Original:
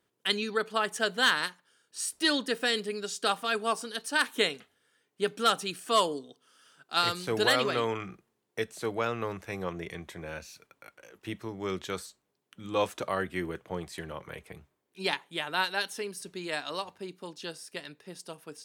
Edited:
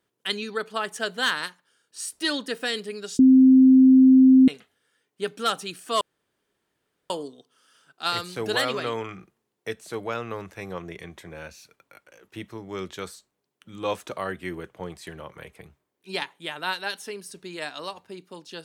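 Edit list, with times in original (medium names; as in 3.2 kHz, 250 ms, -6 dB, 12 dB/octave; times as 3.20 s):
3.19–4.48 s: bleep 261 Hz -10 dBFS
6.01 s: insert room tone 1.09 s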